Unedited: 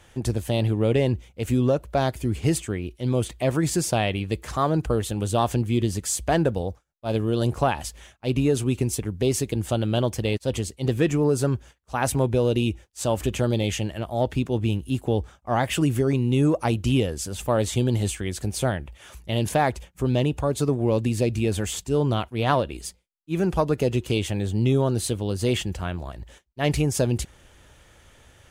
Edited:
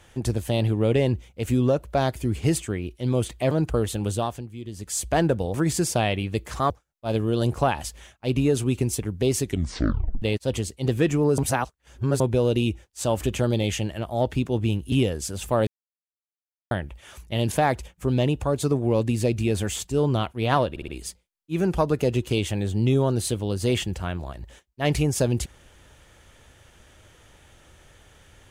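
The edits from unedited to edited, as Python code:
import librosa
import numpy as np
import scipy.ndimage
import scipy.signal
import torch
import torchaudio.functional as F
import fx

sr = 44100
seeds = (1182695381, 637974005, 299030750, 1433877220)

y = fx.edit(x, sr, fx.move(start_s=3.51, length_s=1.16, to_s=6.7),
    fx.fade_down_up(start_s=5.27, length_s=0.9, db=-14.5, fade_s=0.41, curve='qua'),
    fx.tape_stop(start_s=9.42, length_s=0.8),
    fx.reverse_span(start_s=11.38, length_s=0.82),
    fx.cut(start_s=14.92, length_s=1.97),
    fx.silence(start_s=17.64, length_s=1.04),
    fx.stutter(start_s=22.67, slice_s=0.06, count=4), tone=tone)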